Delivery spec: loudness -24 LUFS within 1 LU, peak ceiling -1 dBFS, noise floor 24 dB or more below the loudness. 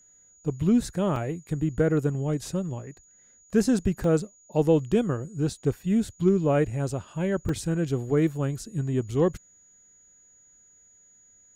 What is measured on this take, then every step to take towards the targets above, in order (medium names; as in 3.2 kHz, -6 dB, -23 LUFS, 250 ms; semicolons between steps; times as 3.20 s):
dropouts 3; longest dropout 2.2 ms; steady tone 6.8 kHz; tone level -55 dBFS; loudness -26.0 LUFS; peak level -10.5 dBFS; loudness target -24.0 LUFS
-> interpolate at 1.16/4.04/7.49 s, 2.2 ms; band-stop 6.8 kHz, Q 30; trim +2 dB